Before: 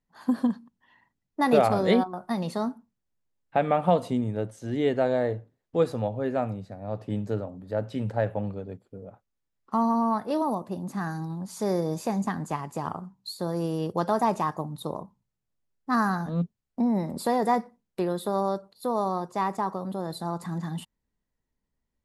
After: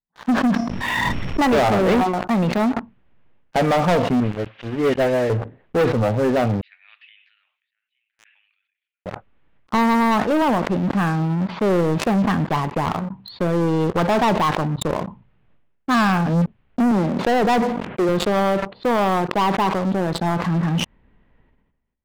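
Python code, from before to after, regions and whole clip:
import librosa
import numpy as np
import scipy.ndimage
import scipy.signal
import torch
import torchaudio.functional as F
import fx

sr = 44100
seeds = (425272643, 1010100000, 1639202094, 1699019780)

y = fx.chain(x, sr, fx.low_shelf(hz=150.0, db=5.5),
    fx.resample_bad(factor=8, down='none', up='zero_stuff'),
    fx.pre_swell(db_per_s=28.0), at=(0.54, 1.43))
y = fx.chain(y, sr, fx.crossing_spikes(level_db=-21.5),
    fx.dispersion(late='highs', ms=86.0, hz=2900.0),
    fx.upward_expand(threshold_db=-38.0, expansion=2.5), at=(4.2, 5.3))
y = fx.chain(y, sr, fx.steep_highpass(hz=2300.0, slope=36),
    fx.tilt_eq(slope=-4.0), at=(6.61, 9.06))
y = fx.chain(y, sr, fx.bandpass_edges(low_hz=150.0, high_hz=2600.0),
    fx.sustainer(db_per_s=97.0), at=(16.91, 18.09))
y = scipy.signal.sosfilt(scipy.signal.butter(6, 3000.0, 'lowpass', fs=sr, output='sos'), y)
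y = fx.leveller(y, sr, passes=5)
y = fx.sustainer(y, sr, db_per_s=53.0)
y = y * librosa.db_to_amplitude(-5.0)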